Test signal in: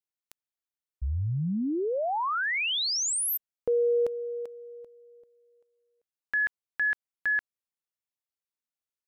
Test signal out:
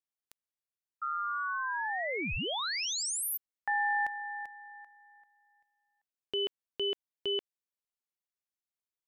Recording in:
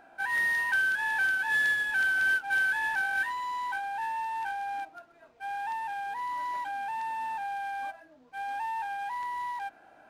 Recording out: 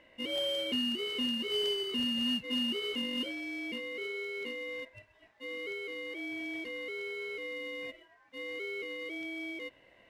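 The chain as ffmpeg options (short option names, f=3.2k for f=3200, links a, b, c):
-af "aeval=exprs='val(0)*sin(2*PI*1300*n/s)':c=same,acontrast=50,volume=-8.5dB"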